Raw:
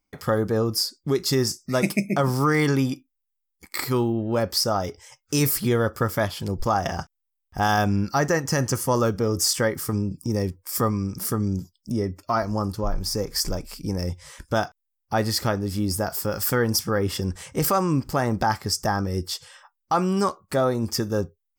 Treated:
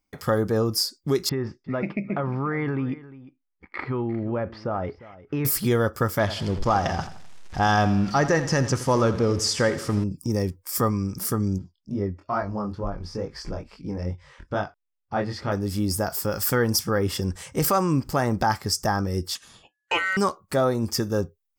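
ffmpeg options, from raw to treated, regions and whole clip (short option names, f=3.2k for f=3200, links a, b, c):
-filter_complex "[0:a]asettb=1/sr,asplit=3[a][b][c];[a]atrim=end=1.294[d];[b]atrim=start=1.29:end=5.45,asetpts=PTS-STARTPTS,afade=t=in:d=0.004:c=qsin,afade=t=out:st=4.156:d=0.004:c=qsin,lowpass=f=2.4k:w=0.5412,lowpass=f=2.4k:w=1.3066,acompressor=threshold=-22dB:ratio=5:attack=3.2:release=140:knee=1:detection=peak,aecho=1:1:352:0.126,atrim=end_sample=183456[e];[c]atrim=start=5.446[f];[d][e]acrossfade=d=0.004:c1=hsin:c2=qsin[g];[g][f]acrossfade=d=0.004:c1=qsin:c2=hsin,asettb=1/sr,asplit=3[h][i][j];[h]atrim=end=6.194[k];[i]atrim=start=6.19:end=10.04,asetpts=PTS-STARTPTS,afade=t=in:d=0.004:c=qsin,afade=t=out:st=3.846:d=0.004:c=qsin,aeval=exprs='val(0)+0.5*0.0224*sgn(val(0))':c=same,lowpass=5.7k,aecho=1:1:85|170|255|340:0.211|0.0888|0.0373|0.0157,atrim=end_sample=169785[l];[j]atrim=start=10.036[m];[k][l]acrossfade=d=0.004:c1=hsin:c2=qsin[n];[n][m]acrossfade=d=0.004:c1=qsin:c2=hsin,asettb=1/sr,asplit=3[o][p][q];[o]atrim=end=11.584[r];[p]atrim=start=11.58:end=15.52,asetpts=PTS-STARTPTS,afade=t=in:d=0.004:c=qsin,afade=t=out:st=3.936:d=0.004:c=qsin,lowpass=2.9k,flanger=delay=20:depth=4.7:speed=2.3[s];[q]atrim=start=15.516[t];[r][s]acrossfade=d=0.004:c1=hsin:c2=qsin[u];[u][t]acrossfade=d=0.004:c1=qsin:c2=hsin,asettb=1/sr,asplit=3[v][w][x];[v]atrim=end=19.354[y];[w]atrim=start=19.35:end=20.17,asetpts=PTS-STARTPTS,afade=t=in:d=0.004:c=qsin,afade=t=out:st=0.816:d=0.004:c=qsin,lowpass=f=11k:w=0.5412,lowpass=f=11k:w=1.3066,aeval=exprs='val(0)*sin(2*PI*1700*n/s)':c=same[z];[x]atrim=start=20.166[aa];[y][z]acrossfade=d=0.004:c1=hsin:c2=qsin[ab];[ab][aa]acrossfade=d=0.004:c1=qsin:c2=hsin"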